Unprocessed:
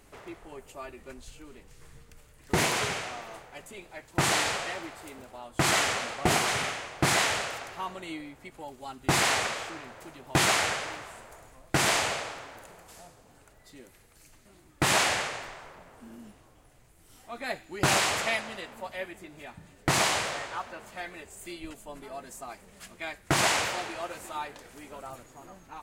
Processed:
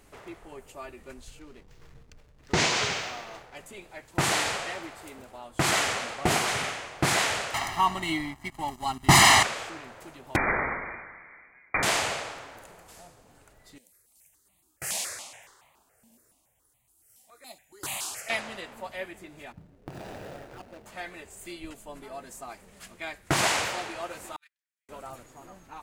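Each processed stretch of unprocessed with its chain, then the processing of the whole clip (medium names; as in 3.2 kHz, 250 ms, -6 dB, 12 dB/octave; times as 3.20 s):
1.39–3.56 s: low-pass 6.1 kHz 24 dB/octave + treble shelf 4.1 kHz +11 dB + hysteresis with a dead band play -50.5 dBFS
7.54–9.43 s: waveshaping leveller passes 2 + comb 1 ms, depth 88%
10.36–11.83 s: steep high-pass 270 Hz 48 dB/octave + frequency inversion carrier 2.7 kHz
13.78–18.30 s: high-pass 48 Hz + pre-emphasis filter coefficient 0.8 + stepped phaser 7.1 Hz 360–1500 Hz
19.52–20.86 s: median filter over 41 samples + compression 12:1, threshold -36 dBFS
24.36–24.89 s: steep high-pass 1.5 kHz + treble shelf 12 kHz +4 dB + gate -41 dBFS, range -43 dB
whole clip: none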